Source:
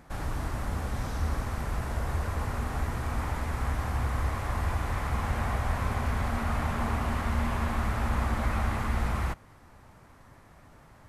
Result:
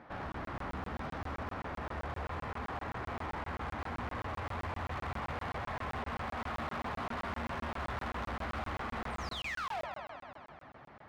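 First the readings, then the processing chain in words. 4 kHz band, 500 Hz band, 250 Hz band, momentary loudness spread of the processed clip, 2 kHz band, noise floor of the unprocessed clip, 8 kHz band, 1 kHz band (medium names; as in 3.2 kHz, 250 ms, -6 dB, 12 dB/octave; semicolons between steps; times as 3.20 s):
-2.5 dB, -4.0 dB, -8.5 dB, 3 LU, -4.0 dB, -55 dBFS, -14.0 dB, -4.0 dB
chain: high-pass 330 Hz 6 dB/octave; in parallel at -2 dB: compression, threshold -46 dBFS, peak gain reduction 15 dB; on the sum: painted sound fall, 9.10–9.84 s, 550–9400 Hz -31 dBFS; flange 0.7 Hz, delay 9.2 ms, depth 6.6 ms, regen -29%; saturation -30 dBFS, distortion -19 dB; distance through air 330 m; on a send: multi-head delay 80 ms, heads first and second, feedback 72%, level -13 dB; on the sum: hard clipper -37.5 dBFS, distortion -12 dB; crackling interface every 0.13 s, samples 1024, zero, from 0.32 s; trim +2.5 dB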